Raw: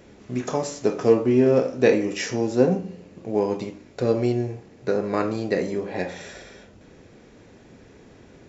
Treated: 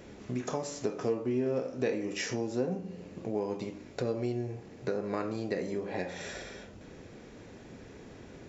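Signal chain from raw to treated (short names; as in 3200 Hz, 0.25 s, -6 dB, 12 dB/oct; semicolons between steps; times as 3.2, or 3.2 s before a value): compressor 2.5:1, threshold -34 dBFS, peak gain reduction 15 dB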